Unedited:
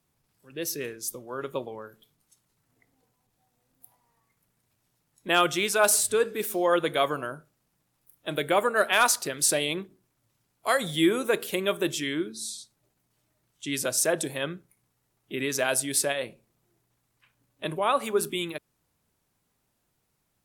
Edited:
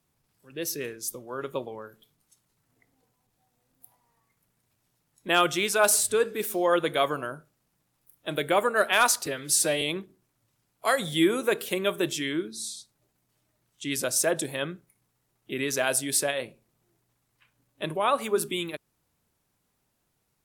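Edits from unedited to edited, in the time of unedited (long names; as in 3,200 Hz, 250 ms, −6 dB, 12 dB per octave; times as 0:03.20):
0:09.26–0:09.63: time-stretch 1.5×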